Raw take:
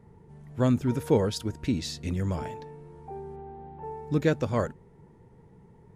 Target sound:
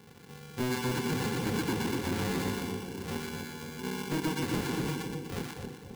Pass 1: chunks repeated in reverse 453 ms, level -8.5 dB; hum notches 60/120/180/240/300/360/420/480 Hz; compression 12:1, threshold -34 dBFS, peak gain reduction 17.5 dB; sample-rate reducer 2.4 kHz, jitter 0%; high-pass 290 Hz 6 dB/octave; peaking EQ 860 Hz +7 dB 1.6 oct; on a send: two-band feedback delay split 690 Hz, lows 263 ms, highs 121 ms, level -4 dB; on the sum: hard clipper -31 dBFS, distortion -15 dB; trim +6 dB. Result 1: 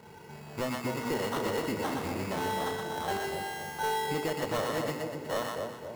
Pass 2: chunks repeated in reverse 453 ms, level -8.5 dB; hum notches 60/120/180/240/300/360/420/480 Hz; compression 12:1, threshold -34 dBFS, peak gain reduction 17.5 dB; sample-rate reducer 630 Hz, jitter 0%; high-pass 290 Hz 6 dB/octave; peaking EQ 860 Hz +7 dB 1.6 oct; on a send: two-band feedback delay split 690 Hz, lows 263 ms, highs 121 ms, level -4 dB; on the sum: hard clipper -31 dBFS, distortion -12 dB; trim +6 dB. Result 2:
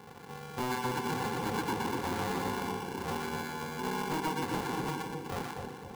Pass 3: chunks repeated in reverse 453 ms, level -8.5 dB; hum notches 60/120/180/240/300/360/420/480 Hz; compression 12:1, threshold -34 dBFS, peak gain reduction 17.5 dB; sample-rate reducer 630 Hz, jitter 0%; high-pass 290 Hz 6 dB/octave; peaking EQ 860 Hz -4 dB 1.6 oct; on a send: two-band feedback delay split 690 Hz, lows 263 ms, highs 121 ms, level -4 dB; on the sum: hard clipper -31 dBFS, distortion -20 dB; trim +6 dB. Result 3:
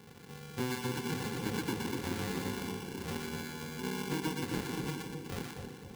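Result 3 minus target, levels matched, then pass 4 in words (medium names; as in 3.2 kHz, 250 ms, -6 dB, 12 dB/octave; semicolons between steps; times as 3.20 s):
compression: peak gain reduction +6.5 dB
chunks repeated in reverse 453 ms, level -8.5 dB; hum notches 60/120/180/240/300/360/420/480 Hz; compression 12:1, threshold -27 dBFS, peak gain reduction 11 dB; sample-rate reducer 630 Hz, jitter 0%; high-pass 290 Hz 6 dB/octave; peaking EQ 860 Hz -4 dB 1.6 oct; on a send: two-band feedback delay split 690 Hz, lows 263 ms, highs 121 ms, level -4 dB; on the sum: hard clipper -31 dBFS, distortion -11 dB; trim +6 dB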